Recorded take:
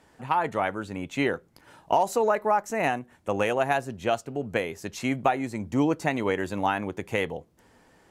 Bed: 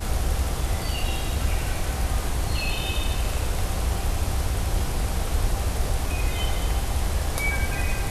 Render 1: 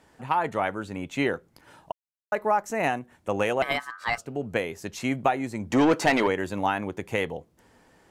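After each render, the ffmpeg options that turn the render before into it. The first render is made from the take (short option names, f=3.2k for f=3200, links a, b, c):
-filter_complex "[0:a]asettb=1/sr,asplit=3[a][b][c];[a]atrim=end=3.624[d];[b]atrim=start=3.62:end=4.18,asetpts=PTS-STARTPTS,afade=t=in:d=0.004:c=qsin,afade=t=out:st=0.556:d=0.004:c=qsin,aeval=exprs='val(0)*sin(2*PI*1400*n/s)':c=same[e];[c]atrim=start=4.176[f];[d][e]acrossfade=d=0.004:c1=hsin:c2=qsin[g];[g][f]acrossfade=d=0.004:c1=qsin:c2=hsin,asplit=3[h][i][j];[h]afade=t=out:st=5.7:d=0.02[k];[i]asplit=2[l][m];[m]highpass=f=720:p=1,volume=21dB,asoftclip=type=tanh:threshold=-11dB[n];[l][n]amix=inputs=2:normalize=0,lowpass=f=3.8k:p=1,volume=-6dB,afade=t=in:st=5.7:d=0.02,afade=t=out:st=6.26:d=0.02[o];[j]afade=t=in:st=6.26:d=0.02[p];[k][o][p]amix=inputs=3:normalize=0,asplit=3[q][r][s];[q]atrim=end=1.92,asetpts=PTS-STARTPTS,afade=t=out:st=1.916:d=0.004:c=hsin[t];[r]atrim=start=1.92:end=2.32,asetpts=PTS-STARTPTS,volume=0[u];[s]atrim=start=2.32,asetpts=PTS-STARTPTS,afade=t=in:d=0.004:c=hsin[v];[t][u][v]concat=n=3:v=0:a=1"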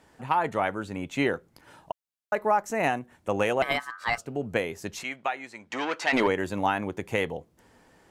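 -filter_complex "[0:a]asplit=3[a][b][c];[a]afade=t=out:st=5.02:d=0.02[d];[b]bandpass=f=2.4k:t=q:w=0.69,afade=t=in:st=5.02:d=0.02,afade=t=out:st=6.12:d=0.02[e];[c]afade=t=in:st=6.12:d=0.02[f];[d][e][f]amix=inputs=3:normalize=0"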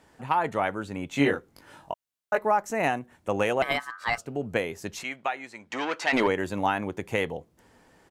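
-filter_complex "[0:a]asplit=3[a][b][c];[a]afade=t=out:st=1.11:d=0.02[d];[b]asplit=2[e][f];[f]adelay=21,volume=-2dB[g];[e][g]amix=inputs=2:normalize=0,afade=t=in:st=1.11:d=0.02,afade=t=out:st=2.37:d=0.02[h];[c]afade=t=in:st=2.37:d=0.02[i];[d][h][i]amix=inputs=3:normalize=0"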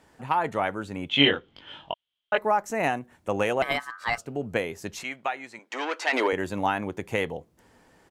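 -filter_complex "[0:a]asettb=1/sr,asplit=3[a][b][c];[a]atrim=end=1.094[d];[b]atrim=start=1.09:end=2.38,asetpts=PTS-STARTPTS,afade=t=in:d=0.004:c=qsin,afade=t=out:st=1.286:d=0.004:c=qsin,lowpass=f=3.2k:t=q:w=13[e];[c]atrim=start=2.376[f];[d][e]acrossfade=d=0.004:c1=hsin:c2=qsin[g];[g][f]acrossfade=d=0.004:c1=qsin:c2=hsin,asettb=1/sr,asplit=3[h][i][j];[h]atrim=end=5.594[k];[i]atrim=start=5.59:end=6.33,asetpts=PTS-STARTPTS,afade=t=in:d=0.004:c=qsin,afade=t=out:st=0.736:d=0.004:c=qsin,highpass=f=300:w=0.5412,highpass=f=300:w=1.3066[l];[j]atrim=start=6.326[m];[k][l]acrossfade=d=0.004:c1=hsin:c2=qsin[n];[n][m]acrossfade=d=0.004:c1=qsin:c2=hsin"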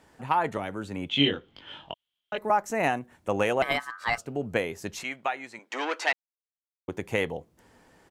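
-filter_complex "[0:a]asettb=1/sr,asplit=3[a][b][c];[a]atrim=end=0.574[d];[b]atrim=start=0.57:end=2.5,asetpts=PTS-STARTPTS,afade=t=in:d=0.004:c=qsin,afade=t=out:st=1.926:d=0.004:c=qsin,acrossover=split=410|3000[e][f][g];[f]acompressor=threshold=-37dB:ratio=3:attack=3.2:release=140:knee=2.83:detection=peak[h];[e][h][g]amix=inputs=3:normalize=0[i];[c]atrim=start=2.496[j];[d][i]acrossfade=d=0.004:c1=hsin:c2=qsin[k];[k][j]acrossfade=d=0.004:c1=qsin:c2=hsin,asplit=3[l][m][n];[l]atrim=end=6.13,asetpts=PTS-STARTPTS,afade=t=out:st=6.126:d=0.004:c=hsin[o];[m]atrim=start=6.13:end=6.88,asetpts=PTS-STARTPTS,volume=0[p];[n]atrim=start=6.88,asetpts=PTS-STARTPTS,afade=t=in:d=0.004:c=hsin[q];[o][p][q]concat=n=3:v=0:a=1"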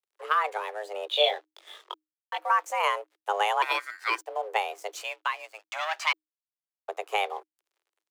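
-af "aeval=exprs='sgn(val(0))*max(abs(val(0))-0.00282,0)':c=same,afreqshift=310"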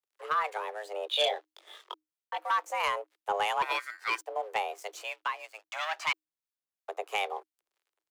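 -filter_complex "[0:a]asoftclip=type=tanh:threshold=-16.5dB,acrossover=split=1200[a][b];[a]aeval=exprs='val(0)*(1-0.5/2+0.5/2*cos(2*PI*3*n/s))':c=same[c];[b]aeval=exprs='val(0)*(1-0.5/2-0.5/2*cos(2*PI*3*n/s))':c=same[d];[c][d]amix=inputs=2:normalize=0"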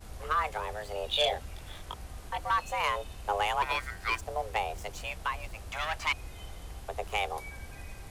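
-filter_complex "[1:a]volume=-19dB[a];[0:a][a]amix=inputs=2:normalize=0"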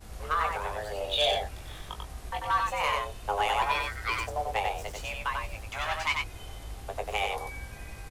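-filter_complex "[0:a]asplit=2[a][b];[b]adelay=19,volume=-8.5dB[c];[a][c]amix=inputs=2:normalize=0,asplit=2[d][e];[e]aecho=0:1:93:0.668[f];[d][f]amix=inputs=2:normalize=0"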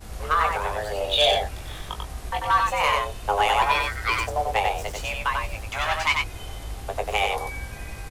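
-af "volume=6.5dB"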